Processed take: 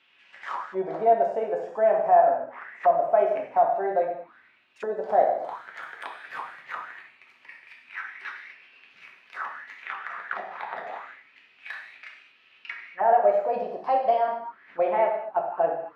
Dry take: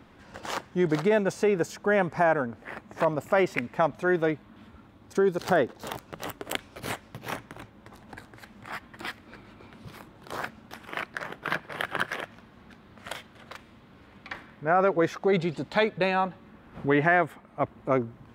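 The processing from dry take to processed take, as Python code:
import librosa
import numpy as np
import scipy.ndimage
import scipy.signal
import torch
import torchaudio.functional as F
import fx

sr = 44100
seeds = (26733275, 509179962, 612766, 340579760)

y = fx.speed_glide(x, sr, from_pct=104, to_pct=126)
y = fx.rev_gated(y, sr, seeds[0], gate_ms=270, shape='falling', drr_db=-1.5)
y = fx.auto_wah(y, sr, base_hz=670.0, top_hz=3000.0, q=4.6, full_db=-23.5, direction='down')
y = y * librosa.db_to_amplitude(5.0)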